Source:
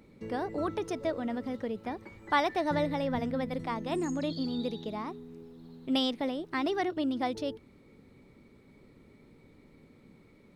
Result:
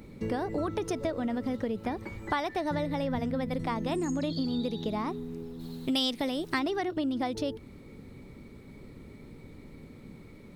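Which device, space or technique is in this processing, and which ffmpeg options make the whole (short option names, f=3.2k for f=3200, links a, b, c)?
ASMR close-microphone chain: -filter_complex "[0:a]lowshelf=f=150:g=7.5,acompressor=threshold=-34dB:ratio=6,highshelf=f=7k:g=5,asplit=3[a][b][c];[a]afade=t=out:st=5.59:d=0.02[d];[b]highshelf=f=3k:g=11,afade=t=in:st=5.59:d=0.02,afade=t=out:st=6.58:d=0.02[e];[c]afade=t=in:st=6.58:d=0.02[f];[d][e][f]amix=inputs=3:normalize=0,volume=6.5dB"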